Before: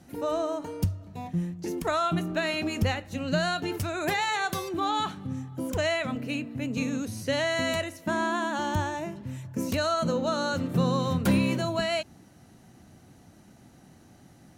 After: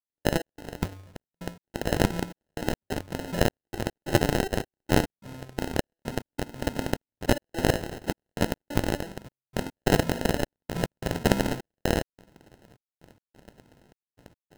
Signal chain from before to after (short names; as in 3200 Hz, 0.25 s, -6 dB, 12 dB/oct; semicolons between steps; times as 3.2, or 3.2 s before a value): half-waves squared off; pre-emphasis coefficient 0.9; notch 3000 Hz, Q 6.2; de-hum 92.64 Hz, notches 5; step gate "...xx..xxxxxxx" 181 bpm -60 dB; sample-and-hold 38×; gain +8 dB